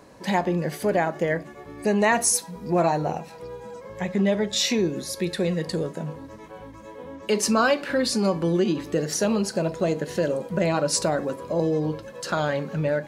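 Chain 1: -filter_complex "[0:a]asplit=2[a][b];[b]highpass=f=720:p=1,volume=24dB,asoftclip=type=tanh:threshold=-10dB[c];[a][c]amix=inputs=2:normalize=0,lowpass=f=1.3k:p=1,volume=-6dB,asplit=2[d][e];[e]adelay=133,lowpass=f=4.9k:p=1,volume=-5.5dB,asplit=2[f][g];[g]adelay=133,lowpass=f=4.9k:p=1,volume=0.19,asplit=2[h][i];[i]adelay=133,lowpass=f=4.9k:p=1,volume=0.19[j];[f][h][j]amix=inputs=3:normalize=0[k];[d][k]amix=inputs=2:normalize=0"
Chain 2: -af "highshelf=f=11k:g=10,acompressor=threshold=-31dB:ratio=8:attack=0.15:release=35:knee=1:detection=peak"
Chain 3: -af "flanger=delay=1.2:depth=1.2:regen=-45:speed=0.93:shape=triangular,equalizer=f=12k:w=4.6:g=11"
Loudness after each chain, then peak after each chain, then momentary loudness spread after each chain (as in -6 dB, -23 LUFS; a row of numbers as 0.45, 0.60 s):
-20.0, -36.5, -28.5 LUFS; -8.5, -27.0, -12.0 dBFS; 8, 5, 17 LU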